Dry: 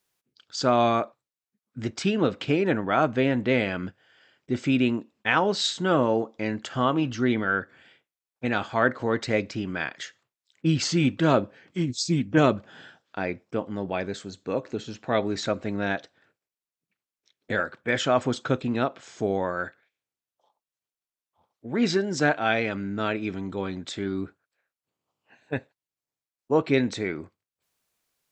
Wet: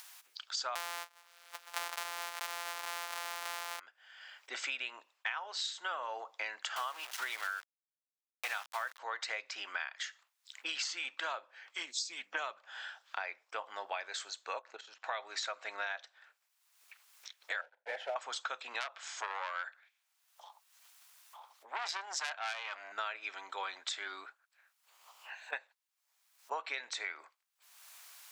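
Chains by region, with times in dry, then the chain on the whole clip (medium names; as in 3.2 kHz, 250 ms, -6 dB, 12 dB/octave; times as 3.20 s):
0.75–3.80 s: sorted samples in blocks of 256 samples + waveshaping leveller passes 3 + swell ahead of each attack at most 45 dB/s
6.76–8.99 s: bass shelf 350 Hz -8 dB + small samples zeroed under -33.5 dBFS
14.59–15.04 s: treble shelf 2.5 kHz -10.5 dB + level held to a coarse grid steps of 14 dB
17.61–18.16 s: block-companded coder 3-bit + low-pass 1 kHz + static phaser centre 310 Hz, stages 6
18.80–22.92 s: high-pass 230 Hz 6 dB/octave + transformer saturation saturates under 3.2 kHz
whole clip: upward compressor, threshold -41 dBFS; high-pass 820 Hz 24 dB/octave; compression 16:1, threshold -38 dBFS; trim +3.5 dB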